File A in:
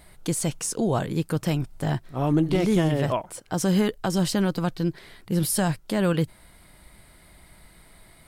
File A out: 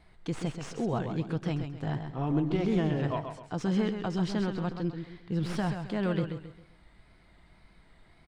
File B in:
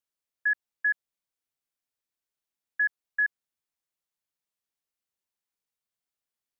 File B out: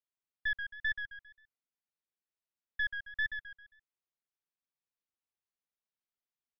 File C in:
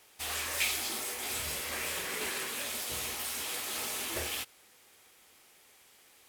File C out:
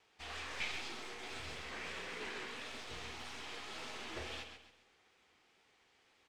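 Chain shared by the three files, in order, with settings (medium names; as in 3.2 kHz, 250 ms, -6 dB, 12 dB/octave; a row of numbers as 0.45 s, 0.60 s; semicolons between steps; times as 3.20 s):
tracing distortion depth 0.044 ms; distance through air 140 m; feedback delay 133 ms, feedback 36%, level -7.5 dB; wow and flutter 51 cents; band-stop 580 Hz, Q 12; trim -6.5 dB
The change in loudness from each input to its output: -6.5 LU, -7.5 LU, -10.5 LU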